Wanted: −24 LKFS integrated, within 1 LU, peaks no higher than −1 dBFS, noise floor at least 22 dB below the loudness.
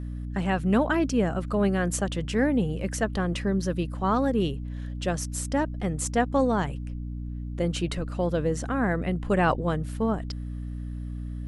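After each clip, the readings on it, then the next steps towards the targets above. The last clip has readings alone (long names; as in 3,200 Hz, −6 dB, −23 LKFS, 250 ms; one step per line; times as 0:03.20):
mains hum 60 Hz; hum harmonics up to 300 Hz; level of the hum −31 dBFS; integrated loudness −27.5 LKFS; sample peak −11.0 dBFS; target loudness −24.0 LKFS
→ hum removal 60 Hz, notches 5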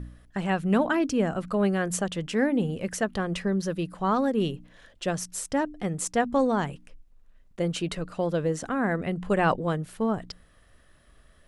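mains hum none found; integrated loudness −27.5 LKFS; sample peak −11.5 dBFS; target loudness −24.0 LKFS
→ level +3.5 dB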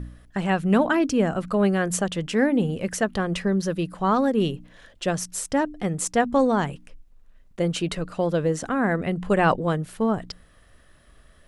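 integrated loudness −24.0 LKFS; sample peak −8.0 dBFS; background noise floor −55 dBFS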